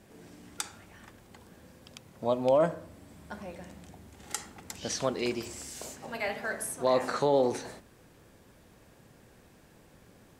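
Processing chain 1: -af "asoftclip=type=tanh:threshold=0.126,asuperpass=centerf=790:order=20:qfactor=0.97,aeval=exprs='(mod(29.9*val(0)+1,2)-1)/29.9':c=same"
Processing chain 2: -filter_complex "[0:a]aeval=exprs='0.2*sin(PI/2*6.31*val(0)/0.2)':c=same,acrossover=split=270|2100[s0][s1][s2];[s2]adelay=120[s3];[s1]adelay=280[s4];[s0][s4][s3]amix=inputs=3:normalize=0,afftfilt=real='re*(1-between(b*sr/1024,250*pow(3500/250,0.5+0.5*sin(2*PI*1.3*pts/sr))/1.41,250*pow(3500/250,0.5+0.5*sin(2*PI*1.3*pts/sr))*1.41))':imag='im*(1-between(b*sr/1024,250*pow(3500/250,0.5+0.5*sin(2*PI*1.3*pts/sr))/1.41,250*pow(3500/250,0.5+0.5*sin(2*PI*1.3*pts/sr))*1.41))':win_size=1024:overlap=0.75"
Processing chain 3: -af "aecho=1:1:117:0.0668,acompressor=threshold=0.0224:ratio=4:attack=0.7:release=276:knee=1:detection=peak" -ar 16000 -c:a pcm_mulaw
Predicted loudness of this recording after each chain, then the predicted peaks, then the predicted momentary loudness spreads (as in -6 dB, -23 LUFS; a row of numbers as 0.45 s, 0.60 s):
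-37.5 LUFS, -22.0 LUFS, -42.5 LUFS; -29.5 dBFS, -5.5 dBFS, -22.5 dBFS; 19 LU, 21 LU, 20 LU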